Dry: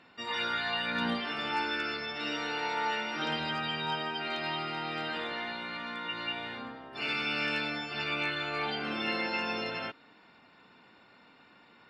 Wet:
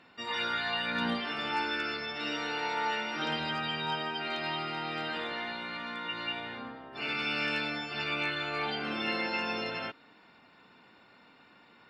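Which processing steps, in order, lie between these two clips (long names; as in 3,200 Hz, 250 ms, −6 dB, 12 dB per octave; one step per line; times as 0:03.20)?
0:06.40–0:07.19: high-shelf EQ 4,600 Hz −6.5 dB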